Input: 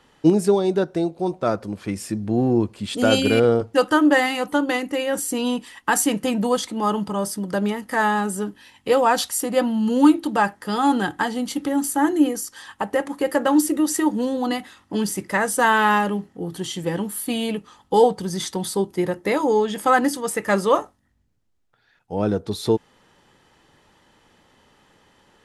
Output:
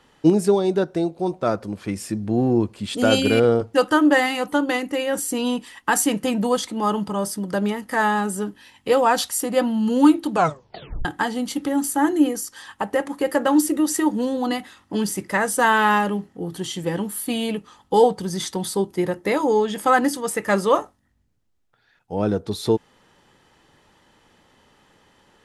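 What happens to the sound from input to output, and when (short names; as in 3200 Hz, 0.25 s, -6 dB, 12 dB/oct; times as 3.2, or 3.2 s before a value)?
10.32 tape stop 0.73 s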